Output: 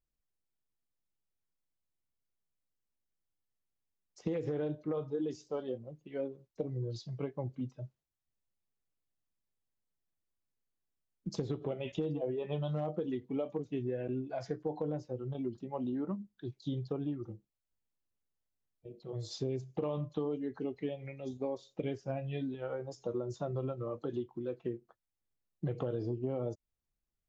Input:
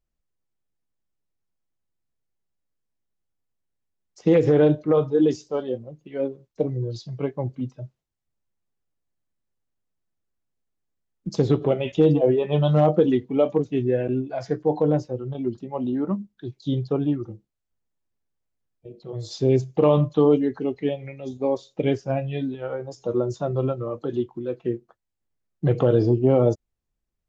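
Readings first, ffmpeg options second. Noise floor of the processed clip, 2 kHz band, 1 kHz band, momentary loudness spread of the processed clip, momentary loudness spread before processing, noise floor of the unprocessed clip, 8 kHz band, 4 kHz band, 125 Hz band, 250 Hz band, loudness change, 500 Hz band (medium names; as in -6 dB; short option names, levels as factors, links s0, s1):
under -85 dBFS, -13.5 dB, -15.0 dB, 7 LU, 14 LU, -81 dBFS, no reading, -11.5 dB, -14.5 dB, -14.5 dB, -15.0 dB, -15.5 dB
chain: -af "acompressor=threshold=0.0562:ratio=6,volume=0.422"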